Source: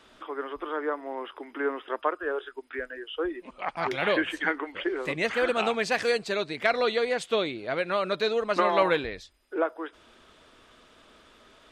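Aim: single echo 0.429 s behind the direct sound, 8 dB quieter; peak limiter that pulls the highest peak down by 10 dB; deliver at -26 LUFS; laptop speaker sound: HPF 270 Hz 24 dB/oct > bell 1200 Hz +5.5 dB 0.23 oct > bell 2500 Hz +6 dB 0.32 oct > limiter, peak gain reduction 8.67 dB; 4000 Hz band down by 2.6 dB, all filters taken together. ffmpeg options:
-af "equalizer=f=4k:t=o:g=-4.5,alimiter=limit=-20.5dB:level=0:latency=1,highpass=f=270:w=0.5412,highpass=f=270:w=1.3066,equalizer=f=1.2k:t=o:w=0.23:g=5.5,equalizer=f=2.5k:t=o:w=0.32:g=6,aecho=1:1:429:0.398,volume=8dB,alimiter=limit=-16dB:level=0:latency=1"

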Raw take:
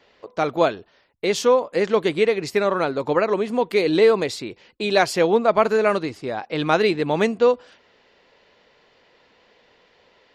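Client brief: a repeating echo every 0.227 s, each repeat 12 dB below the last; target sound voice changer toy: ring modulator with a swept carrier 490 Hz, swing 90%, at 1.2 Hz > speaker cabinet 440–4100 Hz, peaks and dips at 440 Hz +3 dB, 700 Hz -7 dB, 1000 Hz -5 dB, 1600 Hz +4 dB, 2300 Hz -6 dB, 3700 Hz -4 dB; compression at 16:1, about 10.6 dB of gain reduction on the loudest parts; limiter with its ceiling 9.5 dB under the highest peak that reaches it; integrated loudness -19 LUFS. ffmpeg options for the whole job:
-af "acompressor=threshold=-22dB:ratio=16,alimiter=limit=-21dB:level=0:latency=1,aecho=1:1:227|454|681:0.251|0.0628|0.0157,aeval=exprs='val(0)*sin(2*PI*490*n/s+490*0.9/1.2*sin(2*PI*1.2*n/s))':c=same,highpass=440,equalizer=f=440:t=q:w=4:g=3,equalizer=f=700:t=q:w=4:g=-7,equalizer=f=1k:t=q:w=4:g=-5,equalizer=f=1.6k:t=q:w=4:g=4,equalizer=f=2.3k:t=q:w=4:g=-6,equalizer=f=3.7k:t=q:w=4:g=-4,lowpass=f=4.1k:w=0.5412,lowpass=f=4.1k:w=1.3066,volume=17.5dB"

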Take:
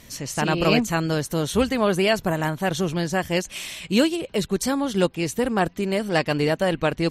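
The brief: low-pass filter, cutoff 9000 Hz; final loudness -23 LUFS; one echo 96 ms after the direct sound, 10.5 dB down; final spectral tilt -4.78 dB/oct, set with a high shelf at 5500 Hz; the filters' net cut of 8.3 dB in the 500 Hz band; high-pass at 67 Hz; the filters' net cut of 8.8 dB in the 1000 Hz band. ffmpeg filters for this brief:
-af "highpass=67,lowpass=9k,equalizer=f=500:t=o:g=-8.5,equalizer=f=1k:t=o:g=-8.5,highshelf=f=5.5k:g=-7.5,aecho=1:1:96:0.299,volume=3.5dB"

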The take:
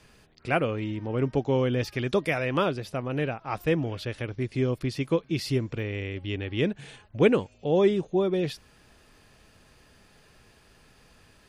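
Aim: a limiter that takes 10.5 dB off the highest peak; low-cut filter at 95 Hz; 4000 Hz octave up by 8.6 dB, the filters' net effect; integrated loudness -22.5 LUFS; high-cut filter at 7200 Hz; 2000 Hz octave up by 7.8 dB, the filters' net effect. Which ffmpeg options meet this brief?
-af "highpass=95,lowpass=7.2k,equalizer=f=2k:t=o:g=7,equalizer=f=4k:t=o:g=9,volume=5.5dB,alimiter=limit=-9dB:level=0:latency=1"

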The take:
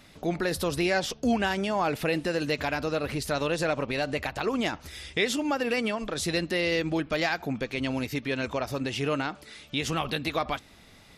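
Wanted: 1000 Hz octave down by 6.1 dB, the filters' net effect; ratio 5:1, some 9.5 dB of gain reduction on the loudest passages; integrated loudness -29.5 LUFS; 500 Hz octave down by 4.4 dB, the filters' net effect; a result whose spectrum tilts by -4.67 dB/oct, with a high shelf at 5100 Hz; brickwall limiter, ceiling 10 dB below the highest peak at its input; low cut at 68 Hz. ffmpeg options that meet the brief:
-af "highpass=68,equalizer=f=500:t=o:g=-3.5,equalizer=f=1k:t=o:g=-7,highshelf=f=5.1k:g=-4.5,acompressor=threshold=-33dB:ratio=5,volume=11.5dB,alimiter=limit=-20dB:level=0:latency=1"

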